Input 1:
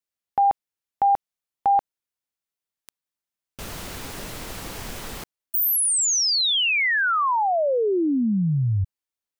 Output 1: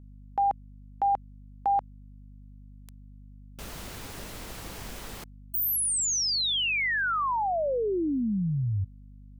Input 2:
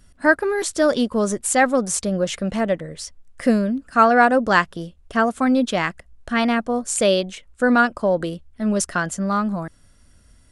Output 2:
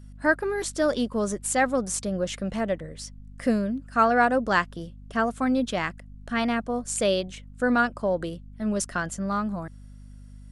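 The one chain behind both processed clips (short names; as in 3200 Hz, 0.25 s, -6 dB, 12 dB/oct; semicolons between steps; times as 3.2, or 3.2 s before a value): hum 50 Hz, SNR 18 dB; gain -6 dB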